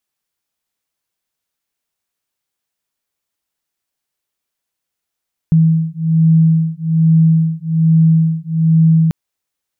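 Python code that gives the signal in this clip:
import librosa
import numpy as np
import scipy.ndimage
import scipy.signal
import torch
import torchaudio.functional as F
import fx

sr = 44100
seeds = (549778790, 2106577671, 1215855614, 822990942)

y = fx.two_tone_beats(sr, length_s=3.59, hz=161.0, beat_hz=1.2, level_db=-12.0)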